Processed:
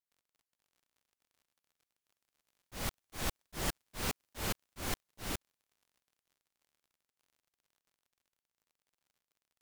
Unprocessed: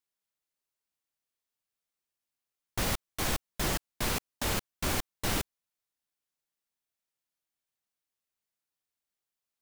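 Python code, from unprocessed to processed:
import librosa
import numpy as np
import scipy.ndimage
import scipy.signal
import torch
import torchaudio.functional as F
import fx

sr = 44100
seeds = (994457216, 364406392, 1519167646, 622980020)

y = fx.doppler_pass(x, sr, speed_mps=8, closest_m=9.2, pass_at_s=3.99)
y = fx.dmg_crackle(y, sr, seeds[0], per_s=59.0, level_db=-62.0)
y = fx.auto_swell(y, sr, attack_ms=282.0)
y = y * librosa.db_to_amplitude(3.0)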